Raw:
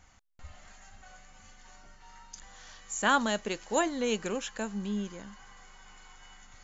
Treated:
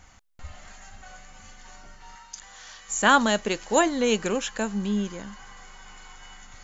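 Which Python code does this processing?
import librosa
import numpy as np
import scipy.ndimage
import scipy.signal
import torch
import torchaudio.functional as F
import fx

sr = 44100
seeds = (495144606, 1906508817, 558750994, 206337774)

y = fx.low_shelf(x, sr, hz=470.0, db=-10.0, at=(2.15, 2.89))
y = y * librosa.db_to_amplitude(7.0)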